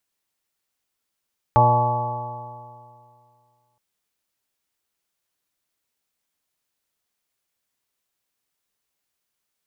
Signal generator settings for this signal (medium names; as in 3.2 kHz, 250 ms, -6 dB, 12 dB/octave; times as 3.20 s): stretched partials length 2.22 s, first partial 119 Hz, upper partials -12.5/-14/-11/-3.5/-14/4/-14/-5.5 dB, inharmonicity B 0.0014, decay 2.28 s, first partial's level -16.5 dB